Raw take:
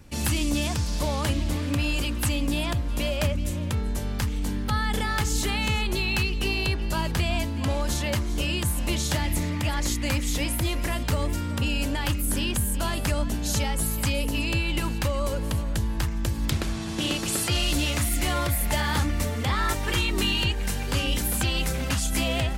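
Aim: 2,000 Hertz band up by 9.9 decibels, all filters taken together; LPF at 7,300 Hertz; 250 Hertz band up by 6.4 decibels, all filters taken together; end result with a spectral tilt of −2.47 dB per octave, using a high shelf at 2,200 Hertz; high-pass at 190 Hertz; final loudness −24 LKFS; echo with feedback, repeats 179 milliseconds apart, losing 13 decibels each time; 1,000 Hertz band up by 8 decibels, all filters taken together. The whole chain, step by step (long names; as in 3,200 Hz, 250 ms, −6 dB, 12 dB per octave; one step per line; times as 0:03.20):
high-pass filter 190 Hz
low-pass filter 7,300 Hz
parametric band 250 Hz +9 dB
parametric band 1,000 Hz +6 dB
parametric band 2,000 Hz +6.5 dB
high-shelf EQ 2,200 Hz +8 dB
repeating echo 179 ms, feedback 22%, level −13 dB
level −3.5 dB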